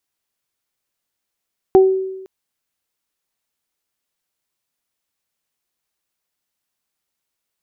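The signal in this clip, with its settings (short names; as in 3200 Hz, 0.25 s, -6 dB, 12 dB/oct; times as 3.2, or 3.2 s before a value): additive tone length 0.51 s, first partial 380 Hz, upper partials -8.5 dB, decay 1.02 s, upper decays 0.26 s, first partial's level -4.5 dB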